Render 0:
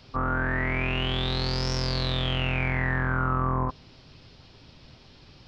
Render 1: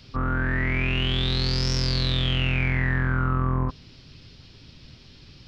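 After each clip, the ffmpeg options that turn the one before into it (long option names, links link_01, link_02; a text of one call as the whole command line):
ffmpeg -i in.wav -af "equalizer=frequency=780:width_type=o:width=1.7:gain=-10.5,volume=4.5dB" out.wav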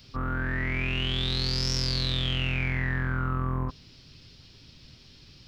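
ffmpeg -i in.wav -af "crystalizer=i=1.5:c=0,volume=-5dB" out.wav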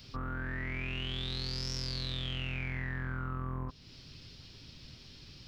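ffmpeg -i in.wav -af "acompressor=threshold=-41dB:ratio=2" out.wav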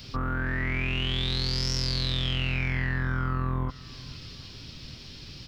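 ffmpeg -i in.wav -af "aecho=1:1:464|928|1392:0.0794|0.0365|0.0168,volume=8.5dB" out.wav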